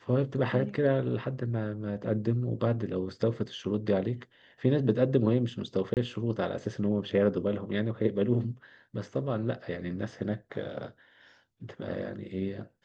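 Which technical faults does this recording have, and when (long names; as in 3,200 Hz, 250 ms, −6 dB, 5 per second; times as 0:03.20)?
0:05.94–0:05.97: drop-out 28 ms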